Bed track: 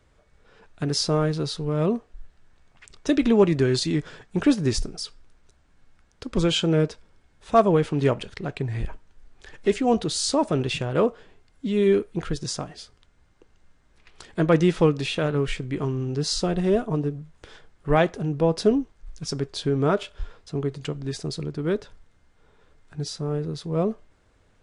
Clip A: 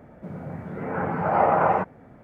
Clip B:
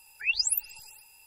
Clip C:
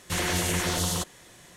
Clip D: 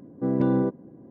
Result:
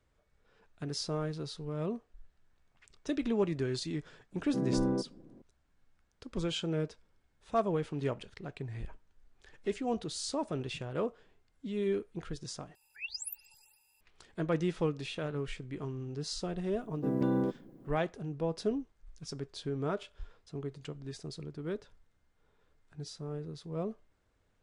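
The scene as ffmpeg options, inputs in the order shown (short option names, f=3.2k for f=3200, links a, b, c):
-filter_complex "[4:a]asplit=2[a][b];[0:a]volume=-12.5dB[c];[b]aemphasis=mode=production:type=75fm[d];[c]asplit=2[e][f];[e]atrim=end=12.754[g];[2:a]atrim=end=1.26,asetpts=PTS-STARTPTS,volume=-14dB[h];[f]atrim=start=14.006[i];[a]atrim=end=1.1,asetpts=PTS-STARTPTS,volume=-8dB,afade=t=in:d=0.004:c=hsin,afade=t=out:st=1.096:d=0.004:c=hsin,adelay=4320[j];[d]atrim=end=1.1,asetpts=PTS-STARTPTS,volume=-6.5dB,afade=t=in:d=0.004:c=hsin,afade=t=out:st=1.096:d=0.004:c=hsin,adelay=16810[k];[g][h]acrossfade=d=0.004:c1=hsin:c2=hsin[l];[l][i]acrossfade=d=0.004:c1=hsin:c2=hsin[m];[m][j][k]amix=inputs=3:normalize=0"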